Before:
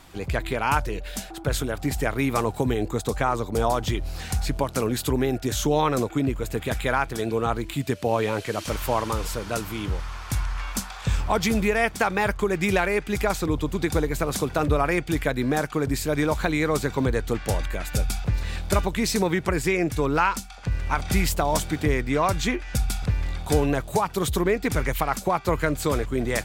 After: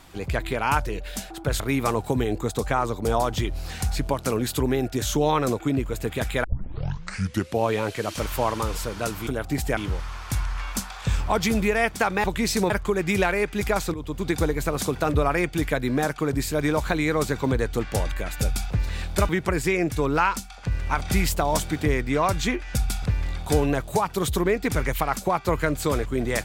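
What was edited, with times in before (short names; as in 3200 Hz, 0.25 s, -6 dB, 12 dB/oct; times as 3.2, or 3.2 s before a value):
1.6–2.1 move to 9.77
6.94 tape start 1.16 s
13.48–13.83 fade in, from -13 dB
18.83–19.29 move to 12.24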